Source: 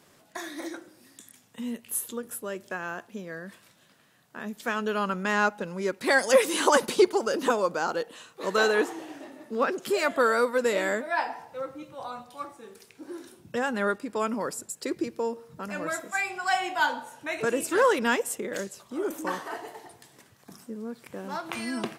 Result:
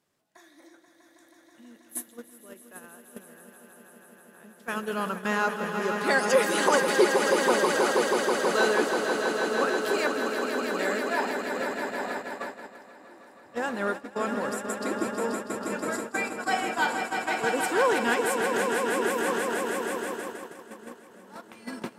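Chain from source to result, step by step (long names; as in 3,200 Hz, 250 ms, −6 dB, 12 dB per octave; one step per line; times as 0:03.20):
gain on a spectral selection 0:10.07–0:10.79, 340–12,000 Hz −19 dB
echo that builds up and dies away 161 ms, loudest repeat 5, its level −7.5 dB
noise gate −28 dBFS, range −15 dB
level −2.5 dB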